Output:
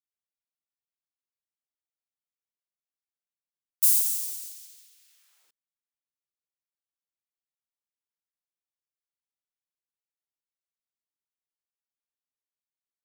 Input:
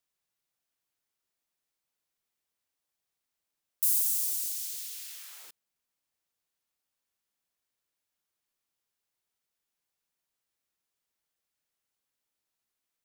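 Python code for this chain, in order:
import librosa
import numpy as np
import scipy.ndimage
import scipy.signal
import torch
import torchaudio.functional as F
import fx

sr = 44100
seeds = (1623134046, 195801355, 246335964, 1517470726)

y = fx.peak_eq(x, sr, hz=13000.0, db=-4.0, octaves=0.37)
y = fx.upward_expand(y, sr, threshold_db=-42.0, expansion=2.5)
y = y * librosa.db_to_amplitude(8.0)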